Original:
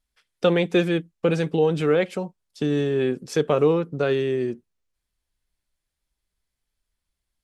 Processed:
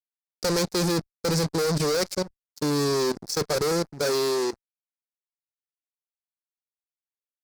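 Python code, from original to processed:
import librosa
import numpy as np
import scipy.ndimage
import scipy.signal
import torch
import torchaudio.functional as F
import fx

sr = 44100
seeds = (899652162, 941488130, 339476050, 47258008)

y = fx.fuzz(x, sr, gain_db=32.0, gate_db=-38.0)
y = fx.level_steps(y, sr, step_db=16)
y = fx.highpass(y, sr, hz=fx.line((4.01, 160.0), (4.52, 330.0)), slope=12, at=(4.01, 4.52), fade=0.02)
y = fx.high_shelf_res(y, sr, hz=3800.0, db=7.0, q=3.0)
y = y * librosa.db_to_amplitude(-7.5)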